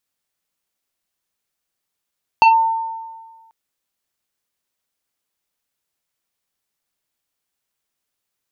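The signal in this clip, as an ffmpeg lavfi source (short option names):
-f lavfi -i "aevalsrc='0.531*pow(10,-3*t/1.51)*sin(2*PI*902*t+0.95*clip(1-t/0.12,0,1)*sin(2*PI*1.98*902*t))':d=1.09:s=44100"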